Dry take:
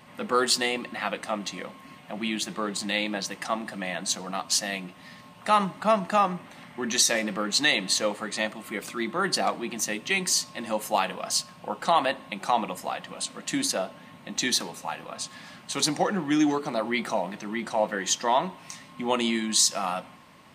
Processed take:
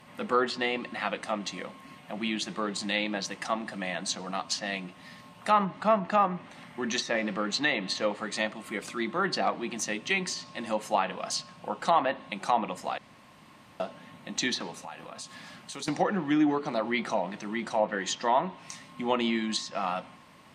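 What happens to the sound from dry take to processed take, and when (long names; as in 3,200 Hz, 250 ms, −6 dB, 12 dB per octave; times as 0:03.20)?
0:12.98–0:13.80: fill with room tone
0:14.83–0:15.88: downward compressor 2.5 to 1, threshold −38 dBFS
whole clip: treble cut that deepens with the level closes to 2,200 Hz, closed at −19 dBFS; level −1.5 dB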